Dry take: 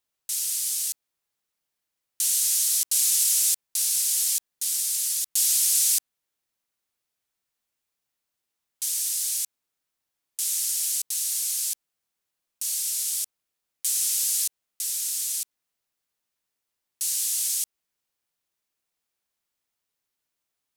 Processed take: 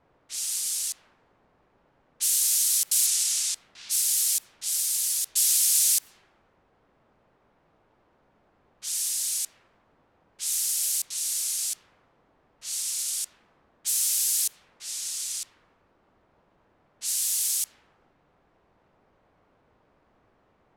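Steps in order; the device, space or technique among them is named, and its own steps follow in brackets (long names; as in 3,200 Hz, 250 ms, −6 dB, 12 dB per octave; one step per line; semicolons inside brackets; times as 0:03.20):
0:03.06–0:03.88: low-pass filter 10,000 Hz → 4,700 Hz 12 dB per octave
cassette deck with a dynamic noise filter (white noise bed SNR 23 dB; low-pass that shuts in the quiet parts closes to 780 Hz, open at −22.5 dBFS)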